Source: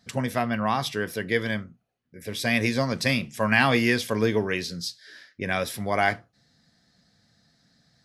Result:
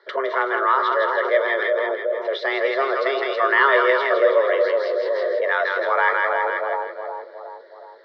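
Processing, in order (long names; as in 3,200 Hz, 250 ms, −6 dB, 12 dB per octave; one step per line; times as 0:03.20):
phaser with its sweep stopped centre 650 Hz, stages 6
echo with a time of its own for lows and highs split 760 Hz, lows 369 ms, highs 162 ms, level −4 dB
in parallel at −0.5 dB: compressor whose output falls as the input rises −38 dBFS, ratio −1
on the sum: single-sideband voice off tune +140 Hz 270–3,200 Hz
level +8 dB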